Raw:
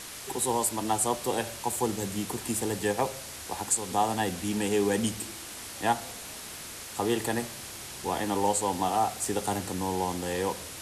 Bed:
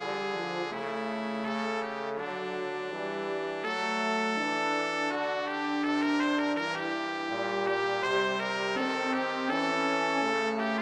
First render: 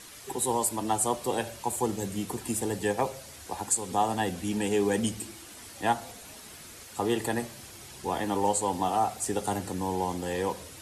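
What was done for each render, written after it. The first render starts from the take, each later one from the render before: noise reduction 8 dB, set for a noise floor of -42 dBFS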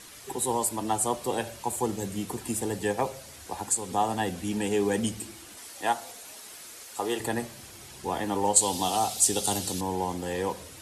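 5.57–7.20 s: tone controls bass -13 dB, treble +3 dB; 8.56–9.81 s: resonant high shelf 2.6 kHz +10.5 dB, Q 1.5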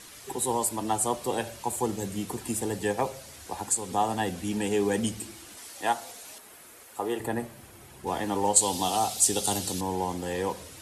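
6.38–8.07 s: peaking EQ 5.3 kHz -10.5 dB 1.9 oct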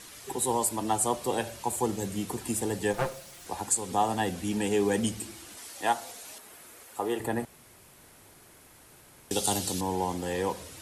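2.93–3.46 s: comb filter that takes the minimum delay 5.7 ms; 7.45–9.31 s: room tone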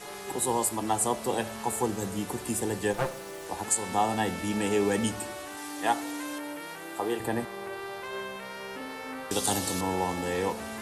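add bed -9 dB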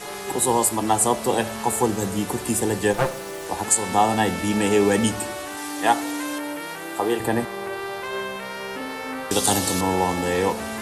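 trim +7.5 dB

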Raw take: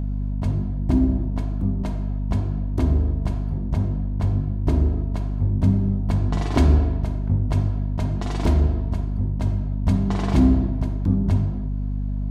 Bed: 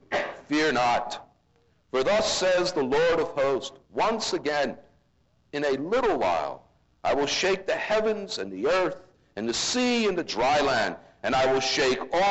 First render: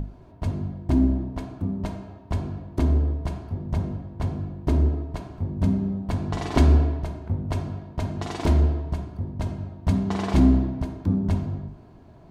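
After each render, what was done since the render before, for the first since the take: hum notches 50/100/150/200/250/300 Hz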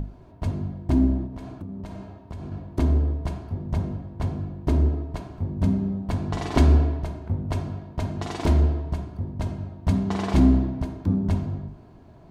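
1.26–2.52 s: compression 10:1, threshold -31 dBFS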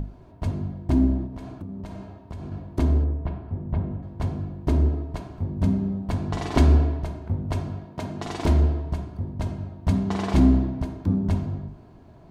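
3.04–4.03 s: distance through air 410 m; 7.85–8.27 s: high-pass 140 Hz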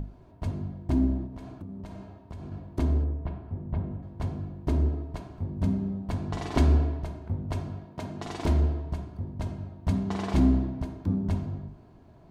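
trim -4.5 dB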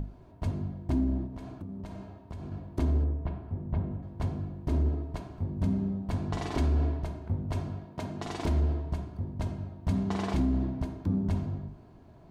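peak limiter -19.5 dBFS, peak gain reduction 9 dB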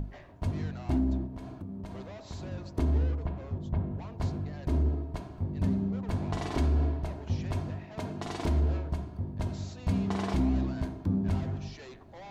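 add bed -25 dB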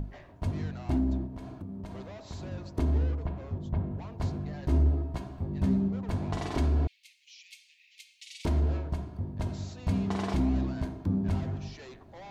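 4.39–5.88 s: doubling 15 ms -5 dB; 6.87–8.45 s: steep high-pass 2.2 kHz 72 dB/octave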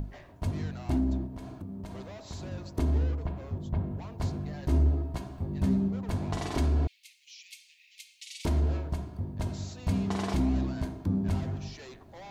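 treble shelf 6 kHz +8 dB

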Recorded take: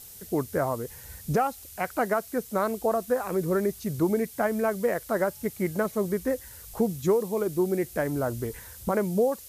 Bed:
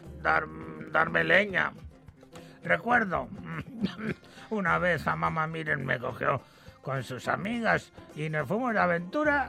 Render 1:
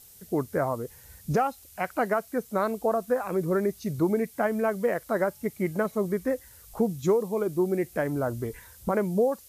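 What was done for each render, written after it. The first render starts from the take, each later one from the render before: noise print and reduce 6 dB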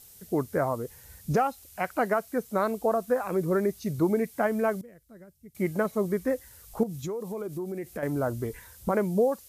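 4.81–5.55 s: amplifier tone stack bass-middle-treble 10-0-1; 6.83–8.03 s: compression 5:1, threshold -31 dBFS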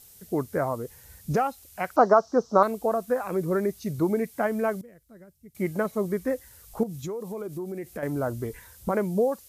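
1.96–2.63 s: FFT filter 110 Hz 0 dB, 450 Hz +7 dB, 1.2 kHz +11 dB, 2.2 kHz -16 dB, 3.5 kHz -2 dB, 5.7 kHz +11 dB, 9.7 kHz -23 dB, 15 kHz -26 dB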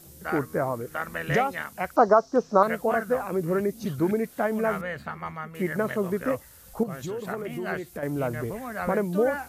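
add bed -7 dB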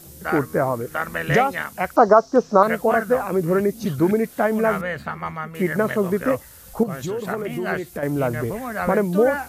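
trim +6 dB; peak limiter -2 dBFS, peak gain reduction 2 dB

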